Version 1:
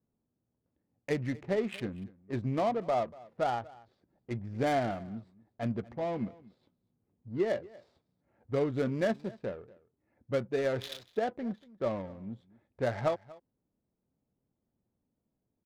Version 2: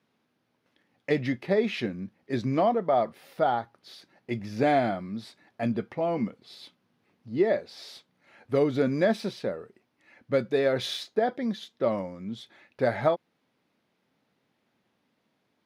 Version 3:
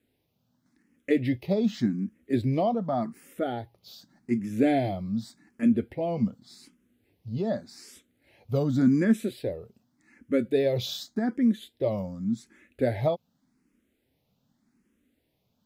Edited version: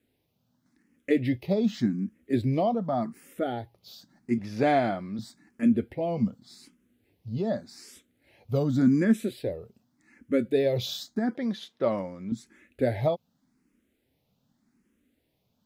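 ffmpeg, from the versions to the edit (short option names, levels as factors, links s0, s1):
-filter_complex "[1:a]asplit=2[s0][s1];[2:a]asplit=3[s2][s3][s4];[s2]atrim=end=4.382[s5];[s0]atrim=start=4.378:end=5.192[s6];[s3]atrim=start=5.188:end=11.352[s7];[s1]atrim=start=11.348:end=12.322[s8];[s4]atrim=start=12.318[s9];[s5][s6]acrossfade=d=0.004:c1=hsin:c2=hsin[s10];[s10][s7]acrossfade=d=0.004:c1=hsin:c2=hsin[s11];[s11][s8]acrossfade=d=0.004:c1=hsin:c2=hsin[s12];[s12][s9]acrossfade=d=0.004:c1=hsin:c2=hsin"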